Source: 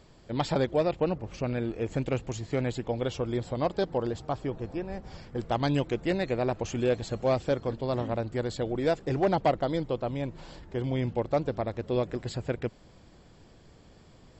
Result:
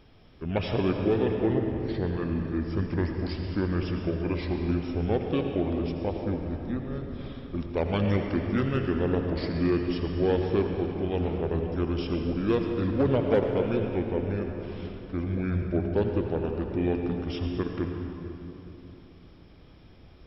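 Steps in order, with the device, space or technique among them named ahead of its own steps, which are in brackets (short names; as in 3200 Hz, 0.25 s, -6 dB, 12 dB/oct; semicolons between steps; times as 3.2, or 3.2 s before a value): slowed and reverbed (varispeed -29%; reverb RT60 3.2 s, pre-delay 72 ms, DRR 3 dB)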